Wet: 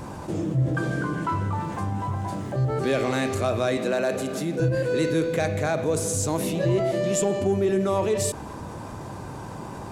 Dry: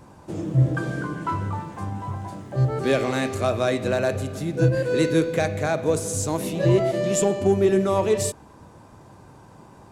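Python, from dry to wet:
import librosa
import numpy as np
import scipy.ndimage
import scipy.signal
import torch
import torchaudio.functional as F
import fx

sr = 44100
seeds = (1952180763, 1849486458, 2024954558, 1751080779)

y = fx.highpass(x, sr, hz=170.0, slope=24, at=(3.77, 4.6))
y = fx.env_flatten(y, sr, amount_pct=50)
y = y * librosa.db_to_amplitude(-5.5)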